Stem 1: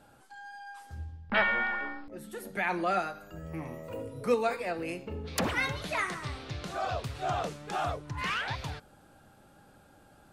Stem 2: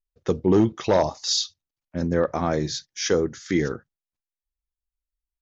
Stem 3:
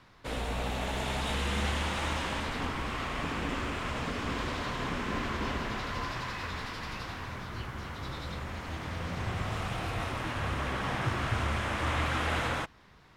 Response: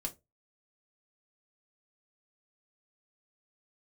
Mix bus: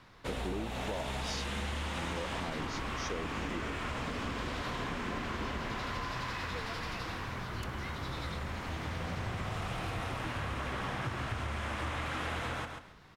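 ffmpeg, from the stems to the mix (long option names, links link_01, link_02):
-filter_complex "[0:a]adelay=2250,volume=-17.5dB[link_01];[1:a]volume=-13dB[link_02];[2:a]volume=0.5dB,asplit=2[link_03][link_04];[link_04]volume=-11dB,aecho=0:1:137|274|411:1|0.2|0.04[link_05];[link_01][link_02][link_03][link_05]amix=inputs=4:normalize=0,acompressor=threshold=-33dB:ratio=6"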